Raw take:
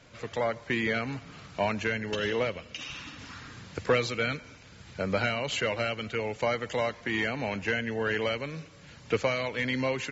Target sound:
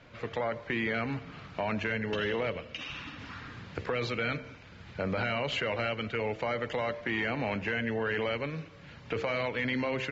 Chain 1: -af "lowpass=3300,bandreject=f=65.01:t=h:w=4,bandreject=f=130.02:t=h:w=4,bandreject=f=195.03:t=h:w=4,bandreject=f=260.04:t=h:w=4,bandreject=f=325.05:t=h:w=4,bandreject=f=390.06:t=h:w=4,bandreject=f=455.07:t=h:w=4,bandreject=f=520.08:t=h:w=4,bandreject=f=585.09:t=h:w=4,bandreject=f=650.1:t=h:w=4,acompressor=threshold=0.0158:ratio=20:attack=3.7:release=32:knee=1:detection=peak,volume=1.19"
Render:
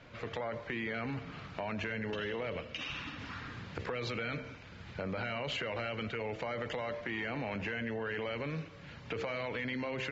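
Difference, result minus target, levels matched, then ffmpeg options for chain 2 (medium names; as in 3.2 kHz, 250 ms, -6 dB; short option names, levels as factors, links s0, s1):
compression: peak gain reduction +6 dB
-af "lowpass=3300,bandreject=f=65.01:t=h:w=4,bandreject=f=130.02:t=h:w=4,bandreject=f=195.03:t=h:w=4,bandreject=f=260.04:t=h:w=4,bandreject=f=325.05:t=h:w=4,bandreject=f=390.06:t=h:w=4,bandreject=f=455.07:t=h:w=4,bandreject=f=520.08:t=h:w=4,bandreject=f=585.09:t=h:w=4,bandreject=f=650.1:t=h:w=4,acompressor=threshold=0.0335:ratio=20:attack=3.7:release=32:knee=1:detection=peak,volume=1.19"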